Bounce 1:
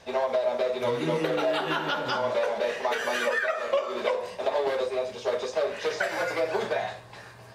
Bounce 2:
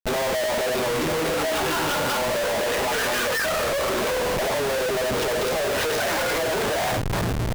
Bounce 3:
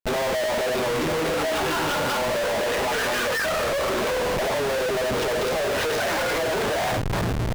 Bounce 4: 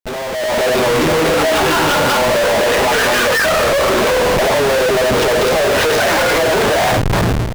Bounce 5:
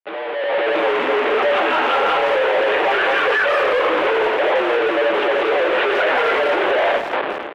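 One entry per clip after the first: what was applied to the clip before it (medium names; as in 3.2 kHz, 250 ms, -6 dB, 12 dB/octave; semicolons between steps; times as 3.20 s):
in parallel at -1 dB: compressor with a negative ratio -28 dBFS, ratio -0.5; on the sum: Schmitt trigger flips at -35.5 dBFS
treble shelf 6.5 kHz -5 dB
level rider gain up to 10.5 dB
mistuned SSB -60 Hz 450–3200 Hz; speakerphone echo 170 ms, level -8 dB; trim -2.5 dB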